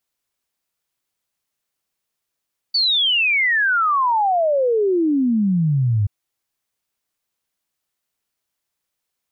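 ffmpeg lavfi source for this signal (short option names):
-f lavfi -i "aevalsrc='0.188*clip(min(t,3.33-t)/0.01,0,1)*sin(2*PI*4600*3.33/log(98/4600)*(exp(log(98/4600)*t/3.33)-1))':d=3.33:s=44100"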